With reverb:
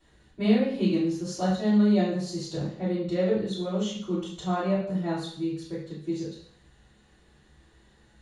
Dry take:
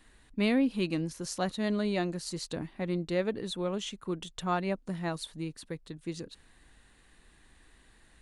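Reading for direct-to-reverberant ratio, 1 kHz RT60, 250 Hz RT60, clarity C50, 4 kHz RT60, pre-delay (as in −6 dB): −9.5 dB, 0.55 s, 0.55 s, 3.0 dB, 0.65 s, 3 ms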